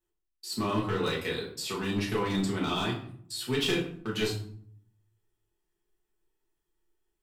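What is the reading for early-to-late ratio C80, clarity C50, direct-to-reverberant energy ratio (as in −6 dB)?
10.5 dB, 7.0 dB, −5.5 dB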